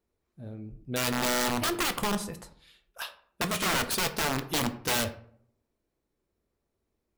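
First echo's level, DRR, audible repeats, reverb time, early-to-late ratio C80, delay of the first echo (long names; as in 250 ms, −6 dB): no echo audible, 8.0 dB, no echo audible, 0.60 s, 17.0 dB, no echo audible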